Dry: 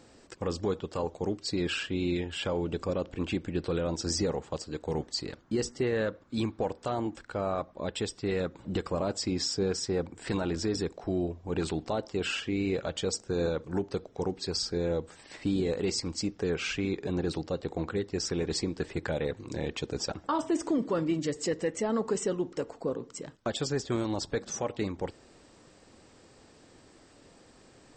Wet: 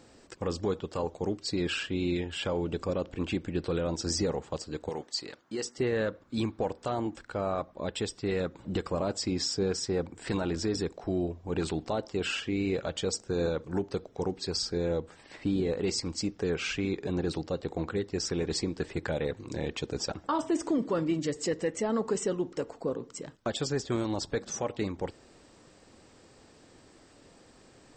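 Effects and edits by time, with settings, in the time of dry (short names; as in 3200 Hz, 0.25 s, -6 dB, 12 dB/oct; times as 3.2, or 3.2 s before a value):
4.89–5.78 HPF 540 Hz 6 dB/oct
15–15.85 high shelf 5500 Hz -10 dB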